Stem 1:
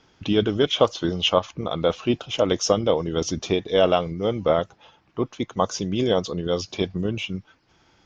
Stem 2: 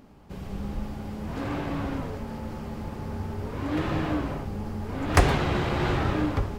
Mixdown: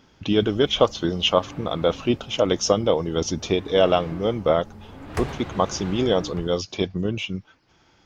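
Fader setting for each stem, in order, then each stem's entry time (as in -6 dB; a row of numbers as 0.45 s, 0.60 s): +0.5 dB, -10.0 dB; 0.00 s, 0.00 s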